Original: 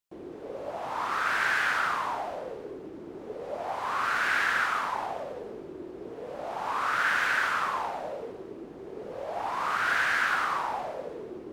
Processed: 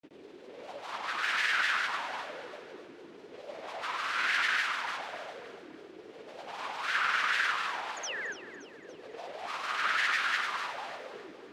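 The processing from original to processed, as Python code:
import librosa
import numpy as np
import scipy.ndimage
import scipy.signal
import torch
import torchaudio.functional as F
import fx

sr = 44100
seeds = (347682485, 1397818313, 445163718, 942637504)

p1 = fx.weighting(x, sr, curve='D')
p2 = fx.spec_paint(p1, sr, seeds[0], shape='fall', start_s=7.98, length_s=0.31, low_hz=1300.0, high_hz=6100.0, level_db=-29.0)
p3 = fx.granulator(p2, sr, seeds[1], grain_ms=100.0, per_s=20.0, spray_ms=100.0, spread_st=3)
p4 = p3 + fx.echo_feedback(p3, sr, ms=286, feedback_pct=47, wet_db=-13, dry=0)
y = p4 * 10.0 ** (-7.0 / 20.0)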